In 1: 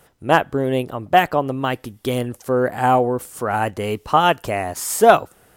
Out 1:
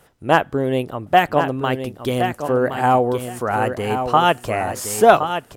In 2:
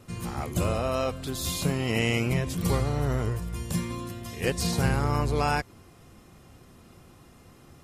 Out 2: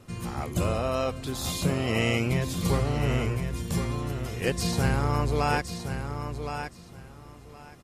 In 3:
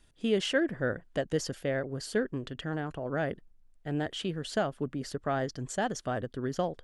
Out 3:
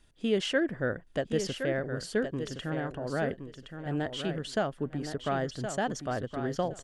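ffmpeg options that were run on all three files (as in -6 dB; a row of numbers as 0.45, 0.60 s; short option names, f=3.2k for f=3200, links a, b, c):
-filter_complex "[0:a]highshelf=f=10k:g=-4.5,asplit=2[a][b];[b]aecho=0:1:1068|2136|3204:0.398|0.0717|0.0129[c];[a][c]amix=inputs=2:normalize=0"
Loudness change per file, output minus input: +0.5, 0.0, +0.5 LU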